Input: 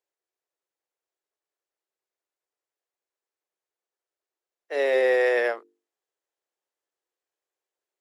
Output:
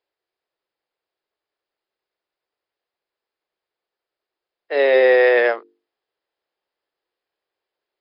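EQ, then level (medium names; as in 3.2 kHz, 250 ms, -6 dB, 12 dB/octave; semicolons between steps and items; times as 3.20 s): brick-wall FIR low-pass 5.2 kHz; +7.5 dB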